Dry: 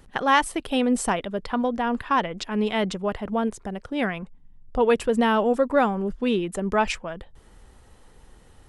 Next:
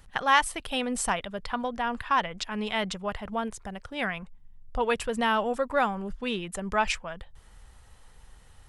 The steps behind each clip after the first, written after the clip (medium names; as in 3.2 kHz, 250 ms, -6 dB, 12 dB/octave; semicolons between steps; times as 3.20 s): peaking EQ 320 Hz -12 dB 1.7 oct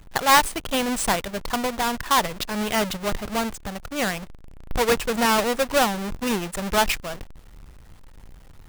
square wave that keeps the level; trim +1.5 dB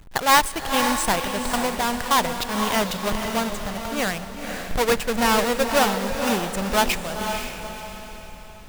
echo that smears into a reverb 506 ms, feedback 41%, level -6 dB; reverberation RT60 4.2 s, pre-delay 45 ms, DRR 19.5 dB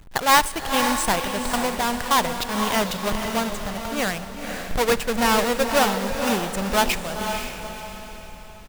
delay 72 ms -23.5 dB